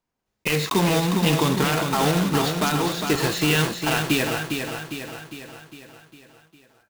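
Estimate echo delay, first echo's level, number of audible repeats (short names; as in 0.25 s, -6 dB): 0.405 s, -6.0 dB, 6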